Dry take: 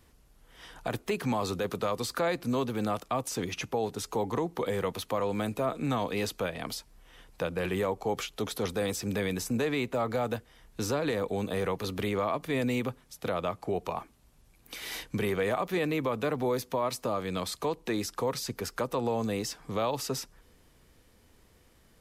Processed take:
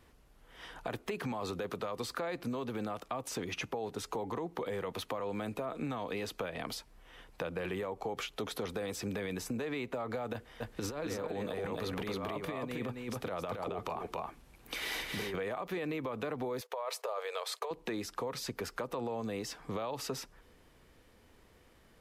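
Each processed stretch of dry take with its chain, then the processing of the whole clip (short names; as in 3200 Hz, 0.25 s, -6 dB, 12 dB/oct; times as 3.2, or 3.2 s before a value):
10.33–15.36 negative-ratio compressor -33 dBFS, ratio -0.5 + echo 0.271 s -3.5 dB
16.61–17.71 gate -52 dBFS, range -15 dB + brick-wall FIR high-pass 400 Hz + negative-ratio compressor -32 dBFS, ratio -0.5
whole clip: tone controls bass -4 dB, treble -7 dB; limiter -25 dBFS; compressor, threshold -35 dBFS; gain +1.5 dB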